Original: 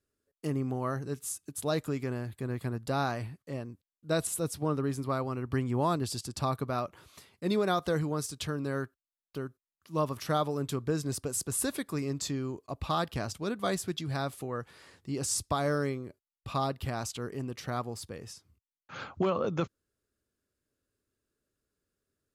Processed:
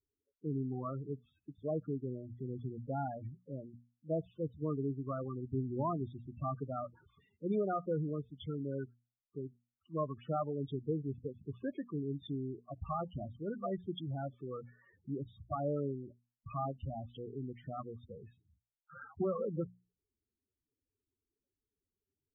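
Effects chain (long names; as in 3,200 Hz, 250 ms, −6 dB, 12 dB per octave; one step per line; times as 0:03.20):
downsampling to 8,000 Hz
spectral peaks only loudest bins 8
mains-hum notches 60/120/180/240 Hz
level −4.5 dB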